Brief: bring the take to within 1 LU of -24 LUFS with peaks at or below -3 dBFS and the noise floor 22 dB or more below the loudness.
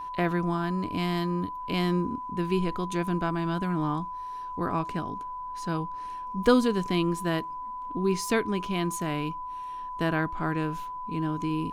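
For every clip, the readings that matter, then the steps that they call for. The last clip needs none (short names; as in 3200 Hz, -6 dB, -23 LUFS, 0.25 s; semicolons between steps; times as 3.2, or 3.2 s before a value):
steady tone 1000 Hz; tone level -34 dBFS; loudness -29.0 LUFS; peak -7.5 dBFS; loudness target -24.0 LUFS
-> notch 1000 Hz, Q 30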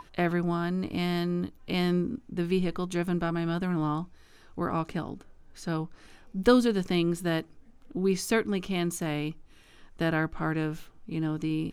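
steady tone none; loudness -29.5 LUFS; peak -7.5 dBFS; loudness target -24.0 LUFS
-> gain +5.5 dB; limiter -3 dBFS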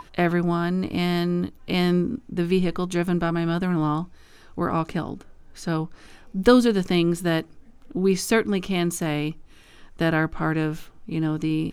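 loudness -24.0 LUFS; peak -3.0 dBFS; noise floor -50 dBFS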